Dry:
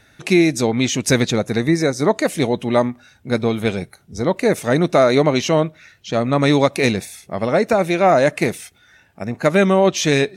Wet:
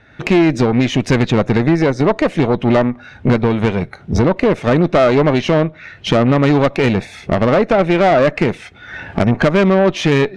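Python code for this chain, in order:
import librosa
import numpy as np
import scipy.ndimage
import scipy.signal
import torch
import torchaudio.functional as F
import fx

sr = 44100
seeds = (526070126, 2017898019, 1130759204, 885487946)

y = fx.recorder_agc(x, sr, target_db=-6.5, rise_db_per_s=35.0, max_gain_db=30)
y = scipy.signal.sosfilt(scipy.signal.butter(2, 2500.0, 'lowpass', fs=sr, output='sos'), y)
y = fx.tube_stage(y, sr, drive_db=13.0, bias=0.55)
y = y * 10.0 ** (6.5 / 20.0)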